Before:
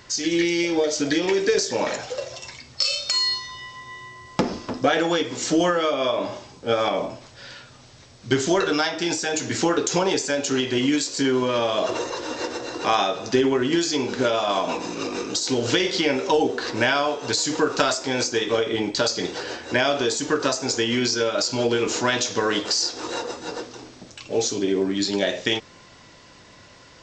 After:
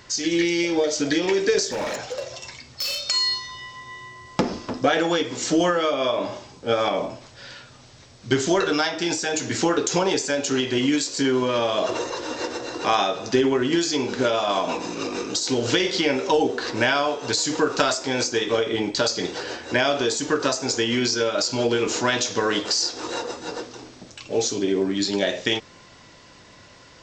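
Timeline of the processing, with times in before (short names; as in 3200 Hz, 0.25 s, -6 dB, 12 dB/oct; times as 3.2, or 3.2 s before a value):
1.67–3.08 overloaded stage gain 23.5 dB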